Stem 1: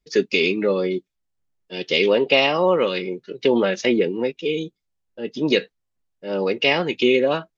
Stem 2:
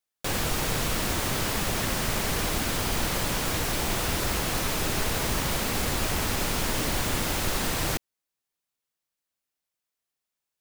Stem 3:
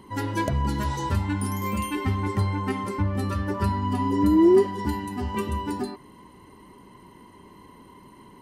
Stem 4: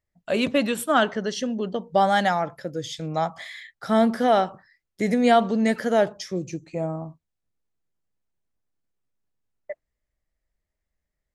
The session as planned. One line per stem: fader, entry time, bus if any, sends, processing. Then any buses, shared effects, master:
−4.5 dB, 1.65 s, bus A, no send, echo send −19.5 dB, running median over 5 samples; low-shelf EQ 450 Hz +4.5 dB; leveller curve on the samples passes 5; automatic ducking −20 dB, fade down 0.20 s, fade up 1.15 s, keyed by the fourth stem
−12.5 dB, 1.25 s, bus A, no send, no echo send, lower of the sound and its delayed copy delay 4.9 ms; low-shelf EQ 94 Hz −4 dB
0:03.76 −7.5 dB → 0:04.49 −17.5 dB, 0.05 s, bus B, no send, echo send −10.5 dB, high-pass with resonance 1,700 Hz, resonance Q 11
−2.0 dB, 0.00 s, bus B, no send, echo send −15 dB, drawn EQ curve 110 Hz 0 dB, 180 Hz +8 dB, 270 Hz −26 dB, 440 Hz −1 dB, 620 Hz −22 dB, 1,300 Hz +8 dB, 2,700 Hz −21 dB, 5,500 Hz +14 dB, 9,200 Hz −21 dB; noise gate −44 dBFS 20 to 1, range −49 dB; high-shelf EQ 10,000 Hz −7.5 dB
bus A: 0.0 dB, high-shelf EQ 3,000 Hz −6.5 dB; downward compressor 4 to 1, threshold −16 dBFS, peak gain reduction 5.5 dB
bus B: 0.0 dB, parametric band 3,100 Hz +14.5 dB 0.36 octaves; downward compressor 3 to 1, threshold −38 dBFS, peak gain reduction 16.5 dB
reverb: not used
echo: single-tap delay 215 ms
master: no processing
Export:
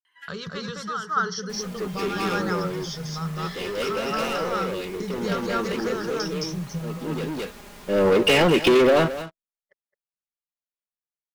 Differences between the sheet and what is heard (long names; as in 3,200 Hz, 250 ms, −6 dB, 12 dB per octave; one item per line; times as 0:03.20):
stem 3 −7.5 dB → −19.0 dB
stem 4 −2.0 dB → +10.0 dB